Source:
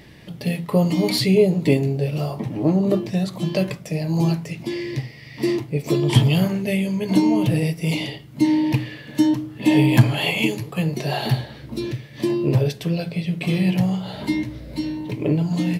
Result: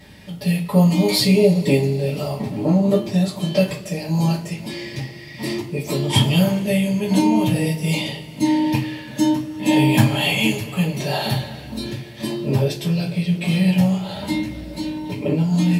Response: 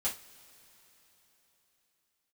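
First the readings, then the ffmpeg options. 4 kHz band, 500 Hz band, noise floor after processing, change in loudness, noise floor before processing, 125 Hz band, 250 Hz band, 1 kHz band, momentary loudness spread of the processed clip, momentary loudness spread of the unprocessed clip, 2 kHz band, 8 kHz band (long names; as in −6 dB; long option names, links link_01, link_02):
+4.0 dB, +1.0 dB, −36 dBFS, +1.5 dB, −41 dBFS, +0.5 dB, +1.5 dB, +3.5 dB, 13 LU, 11 LU, +2.0 dB, +5.5 dB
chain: -filter_complex "[0:a]equalizer=frequency=9200:width_type=o:width=2.2:gain=4[link_01];[1:a]atrim=start_sample=2205,asetrate=48510,aresample=44100[link_02];[link_01][link_02]afir=irnorm=-1:irlink=0,volume=-1dB"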